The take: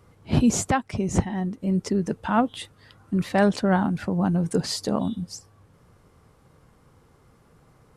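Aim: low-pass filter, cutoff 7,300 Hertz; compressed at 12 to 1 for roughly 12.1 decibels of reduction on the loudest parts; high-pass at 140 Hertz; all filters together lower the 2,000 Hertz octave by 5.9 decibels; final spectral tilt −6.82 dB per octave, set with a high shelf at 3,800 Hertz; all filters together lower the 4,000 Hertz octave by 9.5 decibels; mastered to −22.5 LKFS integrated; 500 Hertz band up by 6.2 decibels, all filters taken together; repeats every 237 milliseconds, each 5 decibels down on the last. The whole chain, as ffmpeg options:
ffmpeg -i in.wav -af "highpass=140,lowpass=7300,equalizer=frequency=500:width_type=o:gain=8.5,equalizer=frequency=2000:width_type=o:gain=-6.5,highshelf=frequency=3800:gain=-6.5,equalizer=frequency=4000:width_type=o:gain=-5.5,acompressor=threshold=-22dB:ratio=12,aecho=1:1:237|474|711|948|1185|1422|1659:0.562|0.315|0.176|0.0988|0.0553|0.031|0.0173,volume=5.5dB" out.wav

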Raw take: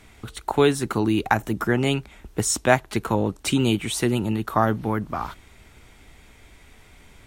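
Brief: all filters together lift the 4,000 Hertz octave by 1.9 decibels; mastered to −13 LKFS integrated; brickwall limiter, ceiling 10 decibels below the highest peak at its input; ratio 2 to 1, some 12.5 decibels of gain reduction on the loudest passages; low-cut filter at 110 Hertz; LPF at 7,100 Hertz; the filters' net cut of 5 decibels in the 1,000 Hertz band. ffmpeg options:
ffmpeg -i in.wav -af "highpass=110,lowpass=7100,equalizer=frequency=1000:width_type=o:gain=-7,equalizer=frequency=4000:width_type=o:gain=3.5,acompressor=threshold=-37dB:ratio=2,volume=23dB,alimiter=limit=-1dB:level=0:latency=1" out.wav

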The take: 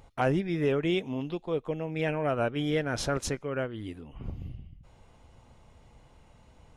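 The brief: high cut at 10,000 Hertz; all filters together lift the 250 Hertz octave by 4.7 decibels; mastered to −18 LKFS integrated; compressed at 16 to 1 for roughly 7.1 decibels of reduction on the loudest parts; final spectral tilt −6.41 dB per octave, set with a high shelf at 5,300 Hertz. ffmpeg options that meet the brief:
ffmpeg -i in.wav -af "lowpass=10000,equalizer=frequency=250:width_type=o:gain=6.5,highshelf=frequency=5300:gain=-7,acompressor=threshold=-26dB:ratio=16,volume=15dB" out.wav

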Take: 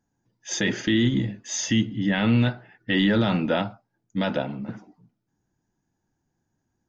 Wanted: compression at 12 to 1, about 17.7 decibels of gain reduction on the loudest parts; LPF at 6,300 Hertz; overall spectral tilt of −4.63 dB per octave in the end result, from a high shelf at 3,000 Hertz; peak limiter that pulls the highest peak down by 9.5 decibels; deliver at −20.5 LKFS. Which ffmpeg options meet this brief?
ffmpeg -i in.wav -af "lowpass=6300,highshelf=frequency=3000:gain=-7.5,acompressor=threshold=-35dB:ratio=12,volume=22.5dB,alimiter=limit=-10.5dB:level=0:latency=1" out.wav

